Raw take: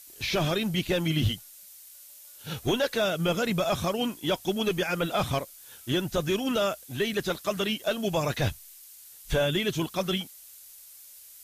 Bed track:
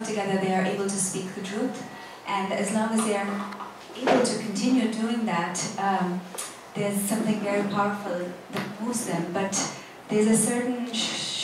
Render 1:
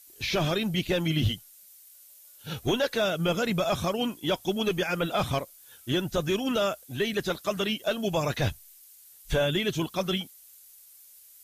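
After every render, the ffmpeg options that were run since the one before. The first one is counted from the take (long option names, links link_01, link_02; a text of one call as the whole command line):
ffmpeg -i in.wav -af "afftdn=noise_reduction=6:noise_floor=-50" out.wav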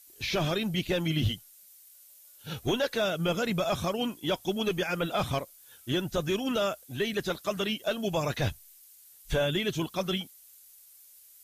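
ffmpeg -i in.wav -af "volume=-2dB" out.wav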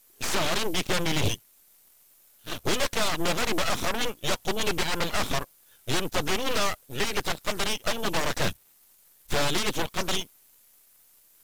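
ffmpeg -i in.wav -af "aeval=exprs='0.141*(cos(1*acos(clip(val(0)/0.141,-1,1)))-cos(1*PI/2))+0.0224*(cos(3*acos(clip(val(0)/0.141,-1,1)))-cos(3*PI/2))+0.0224*(cos(7*acos(clip(val(0)/0.141,-1,1)))-cos(7*PI/2))+0.0501*(cos(8*acos(clip(val(0)/0.141,-1,1)))-cos(8*PI/2))':channel_layout=same" out.wav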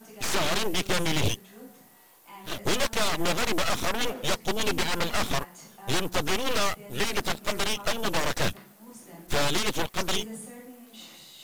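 ffmpeg -i in.wav -i bed.wav -filter_complex "[1:a]volume=-19dB[link_01];[0:a][link_01]amix=inputs=2:normalize=0" out.wav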